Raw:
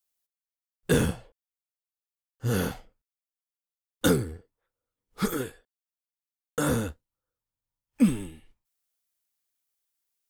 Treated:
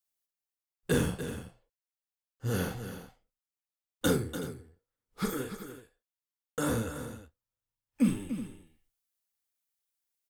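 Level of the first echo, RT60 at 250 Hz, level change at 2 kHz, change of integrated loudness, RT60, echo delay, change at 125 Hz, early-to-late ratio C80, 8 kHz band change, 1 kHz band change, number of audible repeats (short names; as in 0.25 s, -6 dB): -8.0 dB, none, -4.0 dB, -5.5 dB, none, 44 ms, -4.0 dB, none, -4.0 dB, -4.0 dB, 3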